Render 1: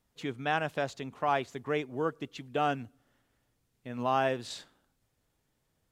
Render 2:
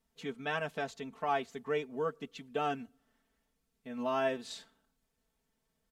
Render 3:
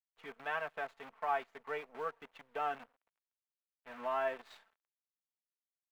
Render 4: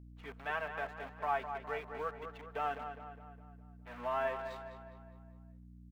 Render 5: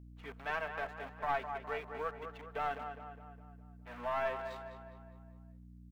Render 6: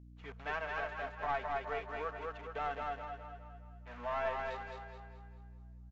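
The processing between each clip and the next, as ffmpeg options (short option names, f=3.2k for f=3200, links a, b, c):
-af "aecho=1:1:4.5:0.96,volume=-6.5dB"
-filter_complex "[0:a]aeval=exprs='0.119*(cos(1*acos(clip(val(0)/0.119,-1,1)))-cos(1*PI/2))+0.00376*(cos(6*acos(clip(val(0)/0.119,-1,1)))-cos(6*PI/2))':c=same,acrusher=bits=8:dc=4:mix=0:aa=0.000001,acrossover=split=570 2500:gain=0.126 1 0.0794[a][b][c];[a][b][c]amix=inputs=3:normalize=0"
-filter_complex "[0:a]aeval=exprs='val(0)+0.00251*(sin(2*PI*60*n/s)+sin(2*PI*2*60*n/s)/2+sin(2*PI*3*60*n/s)/3+sin(2*PI*4*60*n/s)/4+sin(2*PI*5*60*n/s)/5)':c=same,asplit=2[a][b];[b]adelay=205,lowpass=f=3.4k:p=1,volume=-8dB,asplit=2[c][d];[d]adelay=205,lowpass=f=3.4k:p=1,volume=0.52,asplit=2[e][f];[f]adelay=205,lowpass=f=3.4k:p=1,volume=0.52,asplit=2[g][h];[h]adelay=205,lowpass=f=3.4k:p=1,volume=0.52,asplit=2[i][j];[j]adelay=205,lowpass=f=3.4k:p=1,volume=0.52,asplit=2[k][l];[l]adelay=205,lowpass=f=3.4k:p=1,volume=0.52[m];[c][e][g][i][k][m]amix=inputs=6:normalize=0[n];[a][n]amix=inputs=2:normalize=0"
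-af "aeval=exprs='(tanh(20*val(0)+0.45)-tanh(0.45))/20':c=same,volume=2dB"
-filter_complex "[0:a]asplit=2[a][b];[b]aecho=0:1:215|430|645|860|1075:0.708|0.276|0.108|0.042|0.0164[c];[a][c]amix=inputs=2:normalize=0,aresample=16000,aresample=44100,volume=-1.5dB"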